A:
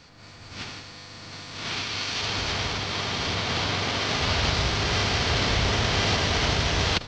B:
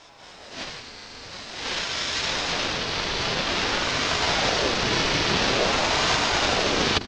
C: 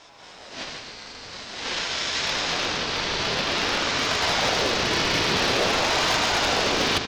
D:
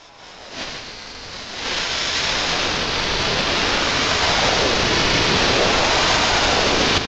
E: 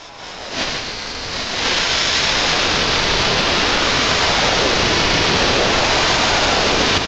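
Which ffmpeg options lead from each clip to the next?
-af "bandreject=f=50:t=h:w=6,bandreject=f=100:t=h:w=6,bandreject=f=150:t=h:w=6,aecho=1:1:5.5:0.41,aeval=exprs='val(0)*sin(2*PI*530*n/s+530*0.6/0.49*sin(2*PI*0.49*n/s))':c=same,volume=1.68"
-af "lowshelf=f=130:g=-4.5,aecho=1:1:140|280|420|560|700|840:0.376|0.184|0.0902|0.0442|0.0217|0.0106,asoftclip=type=hard:threshold=0.188"
-af "lowshelf=f=68:g=8,aresample=16000,acrusher=bits=6:mode=log:mix=0:aa=0.000001,aresample=44100,volume=1.78"
-filter_complex "[0:a]acompressor=threshold=0.0891:ratio=5,asplit=2[s0][s1];[s1]aecho=0:1:786:0.355[s2];[s0][s2]amix=inputs=2:normalize=0,volume=2.51"

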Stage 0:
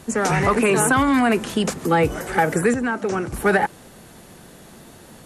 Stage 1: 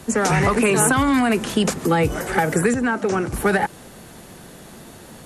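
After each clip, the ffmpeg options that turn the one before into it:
-filter_complex "[0:a]acrossover=split=190|3000[s0][s1][s2];[s1]acompressor=threshold=0.112:ratio=6[s3];[s0][s3][s2]amix=inputs=3:normalize=0,volume=1.41"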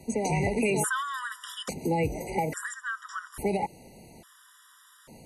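-af "afftfilt=real='re*gt(sin(2*PI*0.59*pts/sr)*(1-2*mod(floor(b*sr/1024/970),2)),0)':imag='im*gt(sin(2*PI*0.59*pts/sr)*(1-2*mod(floor(b*sr/1024/970),2)),0)':win_size=1024:overlap=0.75,volume=0.398"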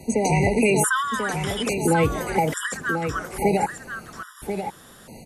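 -af "aecho=1:1:1039:0.422,volume=2.24"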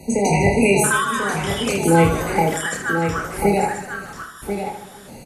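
-af "aecho=1:1:30|78|154.8|277.7|474.3:0.631|0.398|0.251|0.158|0.1,volume=1.19"

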